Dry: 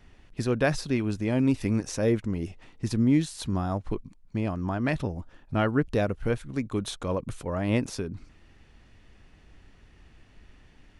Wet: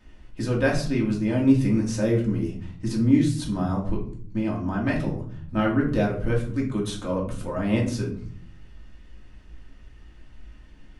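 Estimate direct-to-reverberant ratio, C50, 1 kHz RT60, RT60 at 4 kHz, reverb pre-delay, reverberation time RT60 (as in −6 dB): −3.0 dB, 7.5 dB, 0.50 s, 0.35 s, 3 ms, 0.55 s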